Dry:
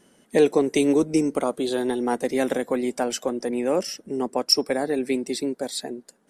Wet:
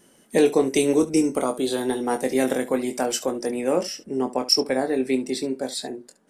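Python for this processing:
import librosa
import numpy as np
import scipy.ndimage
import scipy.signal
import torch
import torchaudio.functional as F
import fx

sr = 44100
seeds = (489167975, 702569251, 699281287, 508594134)

y = fx.high_shelf(x, sr, hz=8700.0, db=fx.steps((0.0, 9.0), (3.73, -3.0)))
y = fx.room_early_taps(y, sr, ms=(23, 70), db=(-7.0, -16.0))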